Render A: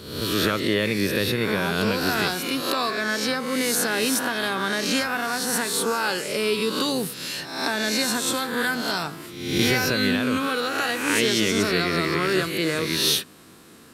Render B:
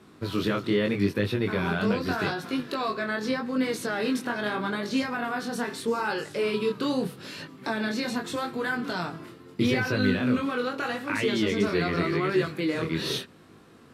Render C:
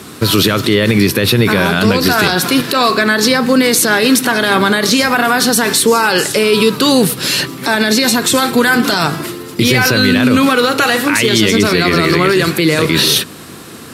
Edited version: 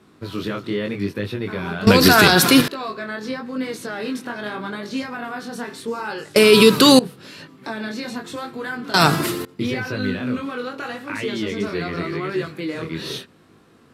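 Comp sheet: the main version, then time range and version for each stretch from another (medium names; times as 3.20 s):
B
1.87–2.68 s: from C
6.36–6.99 s: from C
8.94–9.45 s: from C
not used: A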